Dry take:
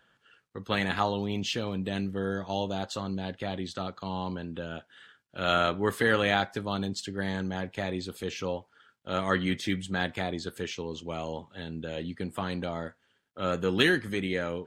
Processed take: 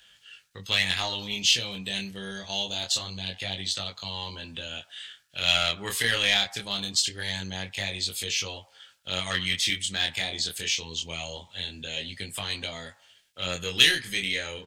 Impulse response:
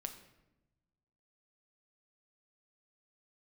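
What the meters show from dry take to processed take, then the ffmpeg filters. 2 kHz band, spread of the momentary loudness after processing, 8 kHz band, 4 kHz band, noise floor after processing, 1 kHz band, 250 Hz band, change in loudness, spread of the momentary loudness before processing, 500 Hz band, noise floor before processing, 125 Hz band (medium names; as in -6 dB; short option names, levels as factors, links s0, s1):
+3.5 dB, 14 LU, +14.5 dB, +11.5 dB, -61 dBFS, -6.0 dB, -8.5 dB, +4.0 dB, 13 LU, -7.5 dB, -71 dBFS, -4.0 dB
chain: -filter_complex "[0:a]highshelf=f=10000:g=-6,acrossover=split=760|1100[s0][s1][s2];[s0]acontrast=85[s3];[s1]aecho=1:1:104|208|312|416:0.501|0.185|0.0686|0.0254[s4];[s3][s4][s2]amix=inputs=3:normalize=0,flanger=delay=19.5:depth=6.2:speed=0.24,equalizer=f=290:w=0.55:g=-14.5,aeval=exprs='0.251*(cos(1*acos(clip(val(0)/0.251,-1,1)))-cos(1*PI/2))+0.0112*(cos(6*acos(clip(val(0)/0.251,-1,1)))-cos(6*PI/2))':c=same,asplit=2[s5][s6];[s6]acompressor=threshold=0.00501:ratio=6,volume=1.12[s7];[s5][s7]amix=inputs=2:normalize=0,aexciter=amount=5.5:drive=6.8:freq=2000,volume=0.708"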